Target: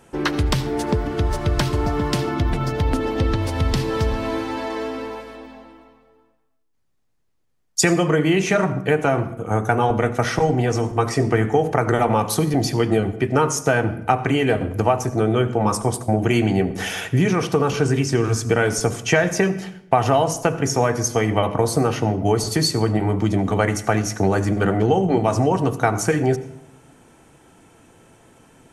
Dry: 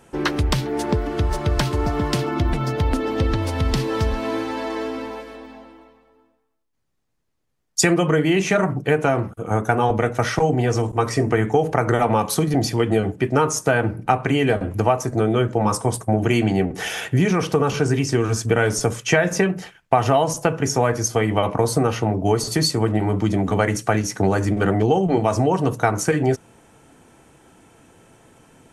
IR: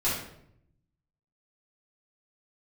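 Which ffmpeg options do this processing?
-filter_complex "[0:a]asplit=2[a][b];[1:a]atrim=start_sample=2205,adelay=72[c];[b][c]afir=irnorm=-1:irlink=0,volume=-24.5dB[d];[a][d]amix=inputs=2:normalize=0"

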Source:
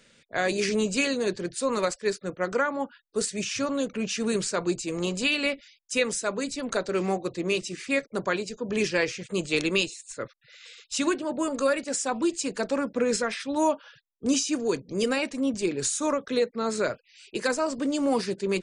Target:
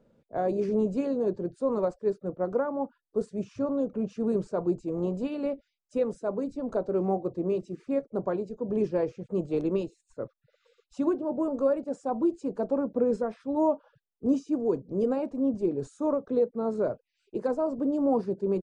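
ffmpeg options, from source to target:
-af "firequalizer=gain_entry='entry(750,0);entry(1900,-25);entry(9100,-29)':delay=0.05:min_phase=1"

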